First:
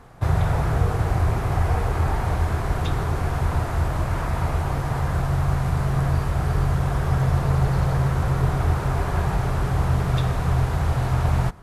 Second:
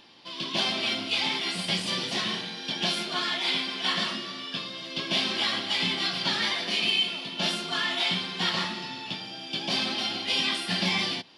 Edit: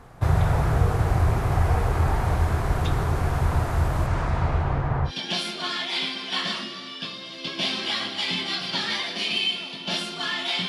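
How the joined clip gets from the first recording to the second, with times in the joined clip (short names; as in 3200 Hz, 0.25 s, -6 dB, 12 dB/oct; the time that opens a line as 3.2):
first
4.06–5.12 LPF 8700 Hz -> 1600 Hz
5.08 switch to second from 2.6 s, crossfade 0.08 s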